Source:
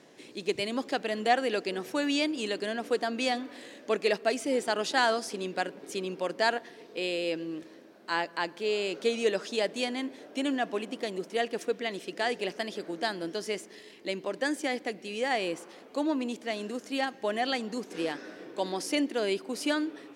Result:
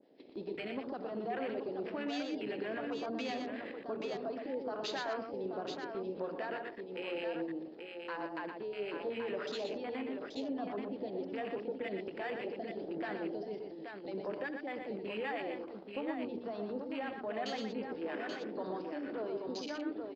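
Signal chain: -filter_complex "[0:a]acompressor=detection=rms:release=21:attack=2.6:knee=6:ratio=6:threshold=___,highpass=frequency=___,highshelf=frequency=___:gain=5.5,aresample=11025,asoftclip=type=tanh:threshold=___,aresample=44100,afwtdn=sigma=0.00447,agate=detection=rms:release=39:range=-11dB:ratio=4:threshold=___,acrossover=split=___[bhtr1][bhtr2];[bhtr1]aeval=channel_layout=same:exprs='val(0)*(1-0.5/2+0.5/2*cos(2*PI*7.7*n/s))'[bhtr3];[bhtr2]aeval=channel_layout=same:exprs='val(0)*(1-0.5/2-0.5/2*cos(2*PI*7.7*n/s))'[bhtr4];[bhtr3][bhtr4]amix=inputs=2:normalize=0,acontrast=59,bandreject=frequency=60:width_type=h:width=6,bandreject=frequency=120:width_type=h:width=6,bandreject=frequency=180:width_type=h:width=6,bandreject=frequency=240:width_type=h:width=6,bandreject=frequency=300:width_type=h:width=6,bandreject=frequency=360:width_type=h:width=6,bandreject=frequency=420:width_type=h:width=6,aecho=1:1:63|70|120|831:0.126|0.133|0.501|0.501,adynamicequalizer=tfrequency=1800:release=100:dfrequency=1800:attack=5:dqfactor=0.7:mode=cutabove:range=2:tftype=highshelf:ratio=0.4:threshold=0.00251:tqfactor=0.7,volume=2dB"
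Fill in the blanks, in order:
-42dB, 180, 2.4k, -36.5dB, -49dB, 860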